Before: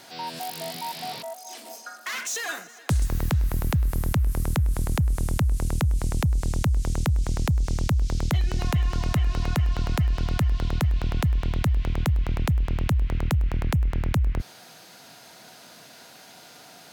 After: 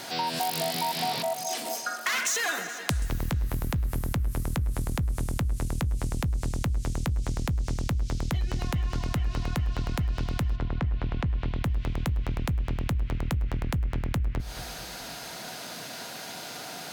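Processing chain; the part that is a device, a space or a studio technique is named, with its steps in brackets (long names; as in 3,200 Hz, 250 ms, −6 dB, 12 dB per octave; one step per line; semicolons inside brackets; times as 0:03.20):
0:10.55–0:11.63: low-pass filter 2,100 Hz → 4,500 Hz 12 dB per octave
serial compression, leveller first (downward compressor 2 to 1, threshold −28 dBFS, peak gain reduction 5.5 dB; downward compressor 6 to 1, threshold −34 dBFS, peak gain reduction 10 dB)
delay with a low-pass on its return 217 ms, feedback 44%, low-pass 3,900 Hz, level −12 dB
level +8.5 dB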